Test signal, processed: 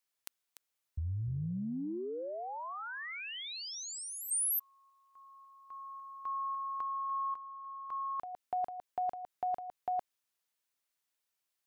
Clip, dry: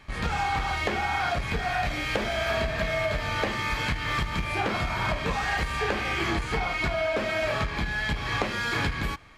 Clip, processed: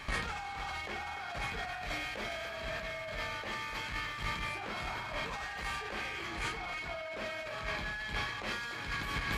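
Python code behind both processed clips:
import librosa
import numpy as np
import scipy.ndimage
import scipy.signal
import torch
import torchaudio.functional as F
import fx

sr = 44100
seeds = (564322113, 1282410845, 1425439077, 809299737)

p1 = fx.low_shelf(x, sr, hz=470.0, db=-7.5)
p2 = p1 + fx.echo_single(p1, sr, ms=294, db=-10.5, dry=0)
y = fx.over_compress(p2, sr, threshold_db=-39.0, ratio=-1.0)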